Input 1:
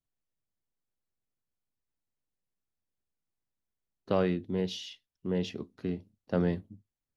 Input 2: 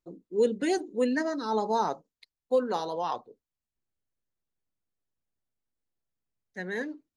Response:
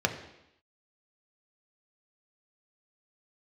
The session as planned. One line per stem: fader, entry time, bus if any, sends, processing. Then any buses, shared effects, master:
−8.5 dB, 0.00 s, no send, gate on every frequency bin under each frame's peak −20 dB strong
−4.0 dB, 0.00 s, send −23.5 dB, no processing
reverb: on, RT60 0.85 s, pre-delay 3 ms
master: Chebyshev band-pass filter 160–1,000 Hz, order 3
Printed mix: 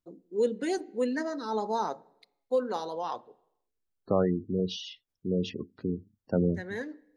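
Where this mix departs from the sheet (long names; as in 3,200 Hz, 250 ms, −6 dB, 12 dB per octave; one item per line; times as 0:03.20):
stem 1 −8.5 dB → +2.0 dB
master: missing Chebyshev band-pass filter 160–1,000 Hz, order 3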